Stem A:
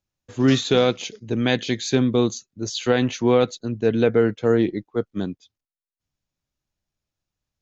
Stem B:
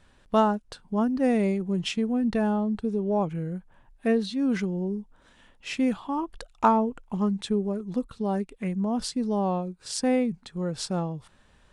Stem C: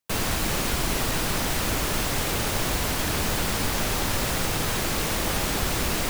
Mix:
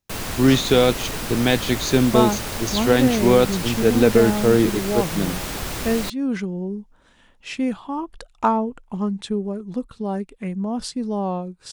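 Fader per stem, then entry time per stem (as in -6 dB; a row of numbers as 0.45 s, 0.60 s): +2.0 dB, +1.5 dB, -3.0 dB; 0.00 s, 1.80 s, 0.00 s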